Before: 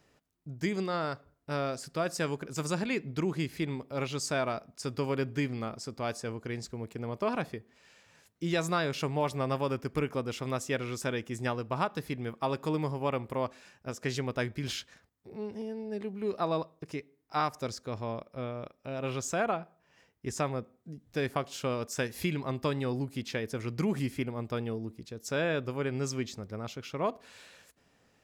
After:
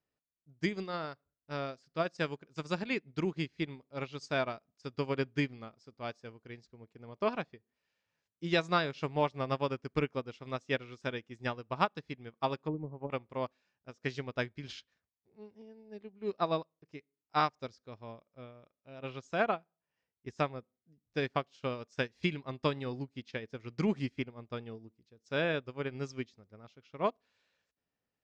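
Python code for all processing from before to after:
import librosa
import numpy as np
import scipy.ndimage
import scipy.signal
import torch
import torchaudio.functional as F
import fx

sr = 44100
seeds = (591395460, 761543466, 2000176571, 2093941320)

y = fx.chain(x, sr, fx.env_lowpass_down(base_hz=360.0, full_db=-26.0),
    fx.high_shelf(hz=3200.0, db=-8.0), at=(12.61, 13.1))
y = scipy.signal.sosfilt(scipy.signal.butter(4, 6100.0, 'lowpass', fs=sr, output='sos'), y)
y = fx.dynamic_eq(y, sr, hz=3300.0, q=0.81, threshold_db=-51.0, ratio=4.0, max_db=3)
y = fx.upward_expand(y, sr, threshold_db=-42.0, expansion=2.5)
y = F.gain(torch.from_numpy(y), 2.5).numpy()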